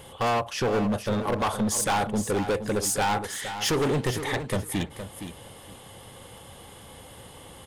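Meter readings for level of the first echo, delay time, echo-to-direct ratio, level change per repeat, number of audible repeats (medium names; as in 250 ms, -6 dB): -10.0 dB, 466 ms, -10.0 dB, -16.0 dB, 2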